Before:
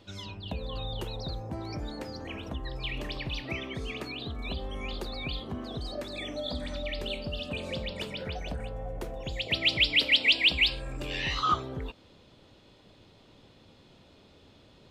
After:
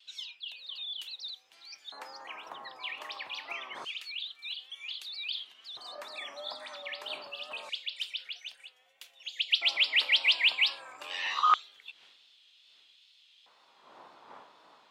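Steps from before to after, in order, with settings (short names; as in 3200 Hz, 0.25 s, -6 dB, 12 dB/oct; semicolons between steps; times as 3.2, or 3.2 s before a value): wind noise 250 Hz -42 dBFS; wow and flutter 69 cents; LFO high-pass square 0.26 Hz 990–3100 Hz; gain -3 dB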